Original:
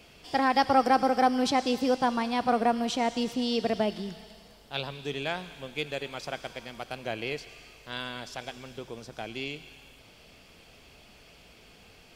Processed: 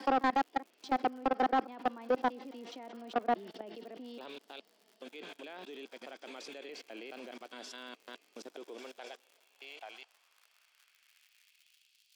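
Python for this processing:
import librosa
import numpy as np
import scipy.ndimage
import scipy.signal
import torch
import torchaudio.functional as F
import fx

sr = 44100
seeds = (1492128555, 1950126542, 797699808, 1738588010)

y = fx.block_reorder(x, sr, ms=209.0, group=4)
y = fx.env_lowpass_down(y, sr, base_hz=2500.0, full_db=-24.0)
y = scipy.signal.sosfilt(scipy.signal.butter(4, 220.0, 'highpass', fs=sr, output='sos'), y)
y = fx.level_steps(y, sr, step_db=24)
y = fx.dmg_crackle(y, sr, seeds[0], per_s=110.0, level_db=-49.0)
y = fx.filter_sweep_highpass(y, sr, from_hz=280.0, to_hz=3500.0, start_s=8.42, end_s=12.07, q=1.5)
y = 10.0 ** (-22.0 / 20.0) * np.tanh(y / 10.0 ** (-22.0 / 20.0))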